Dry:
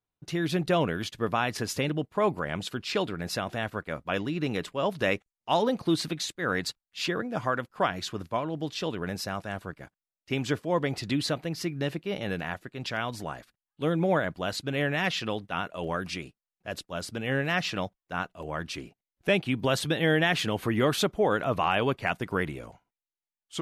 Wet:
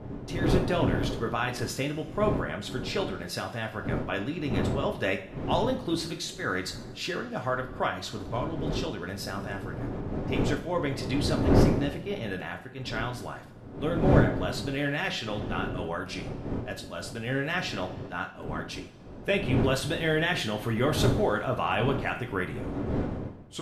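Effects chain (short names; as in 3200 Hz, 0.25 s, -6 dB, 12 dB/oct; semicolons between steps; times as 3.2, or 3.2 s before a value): wind noise 310 Hz -30 dBFS; two-slope reverb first 0.38 s, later 1.7 s, from -18 dB, DRR 3 dB; gain -3.5 dB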